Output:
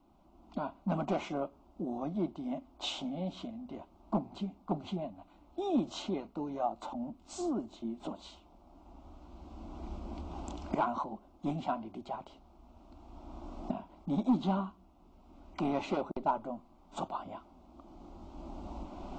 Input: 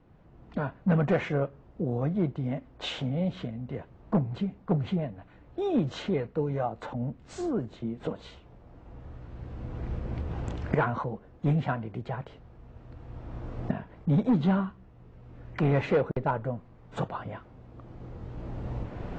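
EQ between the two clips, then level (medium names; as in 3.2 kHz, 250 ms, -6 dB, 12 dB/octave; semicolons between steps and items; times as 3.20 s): tone controls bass -6 dB, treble +4 dB; static phaser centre 470 Hz, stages 6; 0.0 dB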